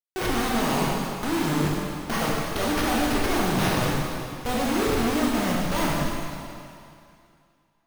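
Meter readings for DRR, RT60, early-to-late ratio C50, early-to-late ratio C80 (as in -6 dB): -4.5 dB, 2.5 s, -2.0 dB, 0.0 dB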